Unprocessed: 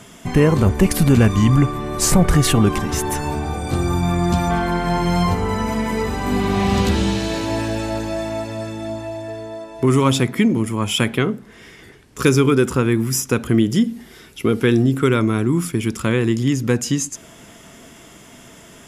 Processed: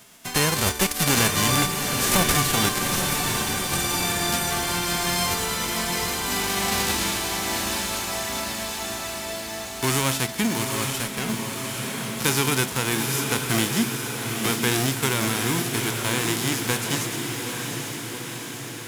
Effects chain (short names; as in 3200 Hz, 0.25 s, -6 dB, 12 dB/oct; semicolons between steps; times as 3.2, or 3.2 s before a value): spectral whitening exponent 0.3; on a send: diffused feedback echo 0.833 s, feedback 64%, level -5 dB; 10.9–11.3 on the sum: tube stage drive 8 dB, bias 0.55; gain -8 dB